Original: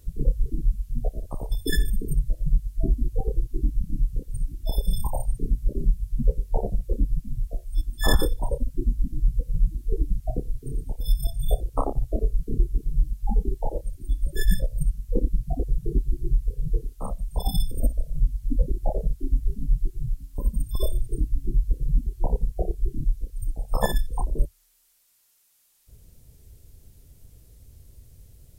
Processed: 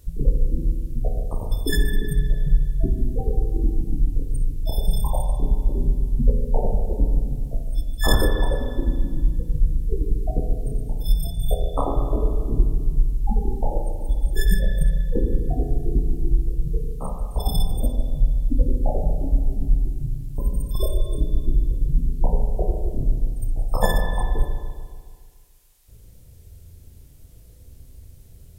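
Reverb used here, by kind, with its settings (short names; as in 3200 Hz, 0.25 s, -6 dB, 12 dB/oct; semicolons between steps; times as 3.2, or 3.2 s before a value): spring tank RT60 1.9 s, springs 36/48 ms, chirp 20 ms, DRR 2 dB; gain +2 dB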